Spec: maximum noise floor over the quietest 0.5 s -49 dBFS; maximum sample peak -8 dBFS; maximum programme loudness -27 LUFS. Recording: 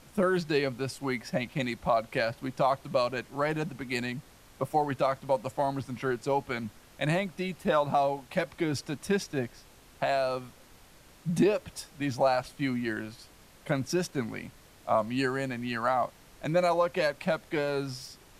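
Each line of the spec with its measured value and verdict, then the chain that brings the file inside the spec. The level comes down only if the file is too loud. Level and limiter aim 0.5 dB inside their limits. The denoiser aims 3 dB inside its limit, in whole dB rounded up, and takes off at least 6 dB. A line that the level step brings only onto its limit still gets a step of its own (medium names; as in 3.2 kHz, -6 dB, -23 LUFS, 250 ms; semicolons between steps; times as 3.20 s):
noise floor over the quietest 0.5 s -55 dBFS: pass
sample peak -14.0 dBFS: pass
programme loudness -30.5 LUFS: pass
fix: none needed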